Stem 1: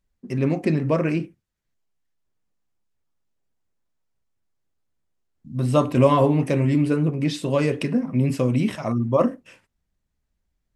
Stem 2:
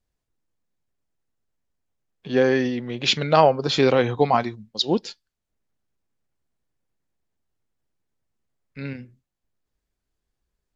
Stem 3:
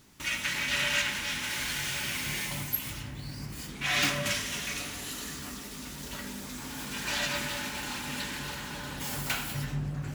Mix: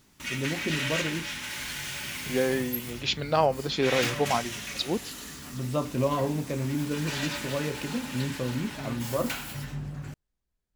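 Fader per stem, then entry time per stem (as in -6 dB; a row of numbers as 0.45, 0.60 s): -10.0, -7.5, -2.5 dB; 0.00, 0.00, 0.00 s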